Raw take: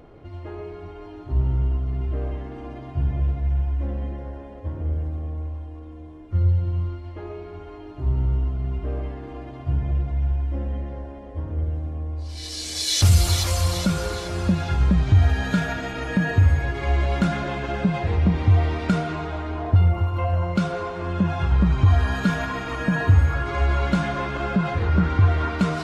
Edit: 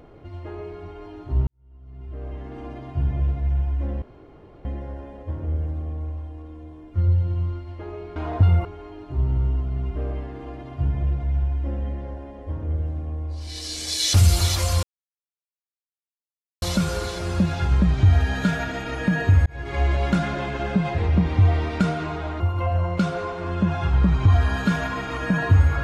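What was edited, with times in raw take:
1.47–2.59 s: fade in quadratic
4.02 s: insert room tone 0.63 s
13.71 s: insert silence 1.79 s
16.55–16.86 s: fade in
19.49–19.98 s: move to 7.53 s

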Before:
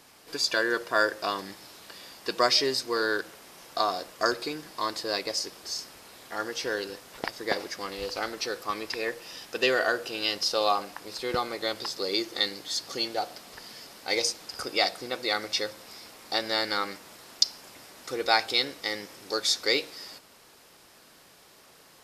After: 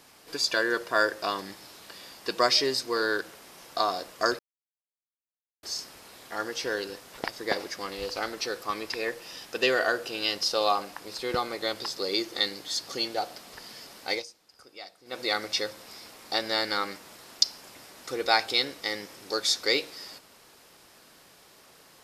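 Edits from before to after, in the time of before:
4.39–5.63 s: mute
14.10–15.20 s: dip -19 dB, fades 0.15 s

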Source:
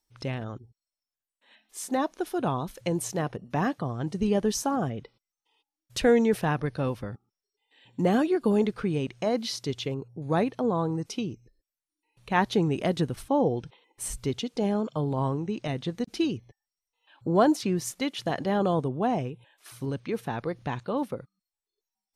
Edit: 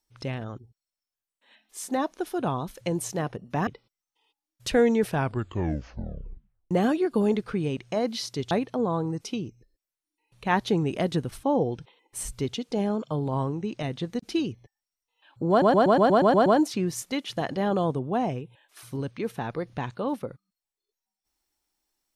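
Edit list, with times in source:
3.67–4.97 s: delete
6.37 s: tape stop 1.64 s
9.81–10.36 s: delete
17.35 s: stutter 0.12 s, 9 plays

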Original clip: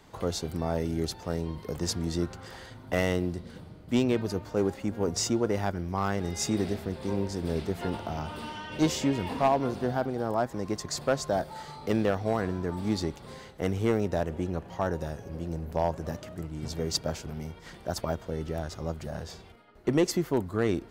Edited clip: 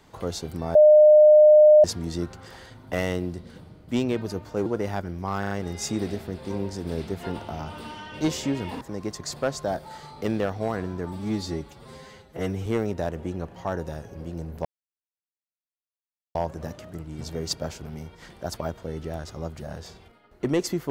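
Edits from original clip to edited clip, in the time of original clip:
0.75–1.84 s: bleep 607 Hz -9.5 dBFS
4.66–5.36 s: delete
6.09 s: stutter 0.04 s, 4 plays
9.39–10.46 s: delete
12.78–13.80 s: stretch 1.5×
15.79 s: insert silence 1.70 s

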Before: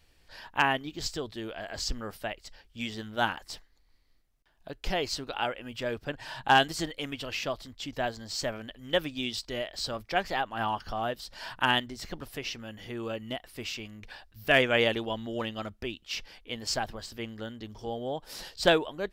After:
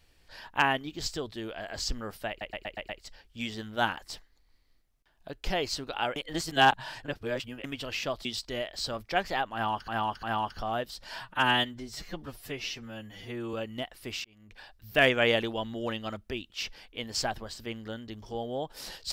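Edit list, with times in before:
2.29 s: stutter 0.12 s, 6 plays
5.56–7.04 s: reverse
7.65–9.25 s: delete
10.53–10.88 s: loop, 3 plays
11.51–13.06 s: stretch 1.5×
13.77–14.31 s: fade in

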